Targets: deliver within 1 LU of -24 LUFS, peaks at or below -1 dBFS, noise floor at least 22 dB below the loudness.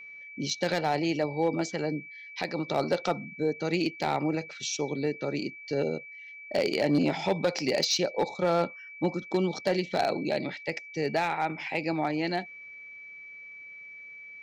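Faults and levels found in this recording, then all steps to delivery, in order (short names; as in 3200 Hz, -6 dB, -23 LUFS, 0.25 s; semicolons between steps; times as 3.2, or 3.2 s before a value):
clipped 0.5%; flat tops at -18.0 dBFS; steady tone 2300 Hz; tone level -43 dBFS; loudness -29.5 LUFS; peak -18.0 dBFS; loudness target -24.0 LUFS
-> clip repair -18 dBFS; notch 2300 Hz, Q 30; gain +5.5 dB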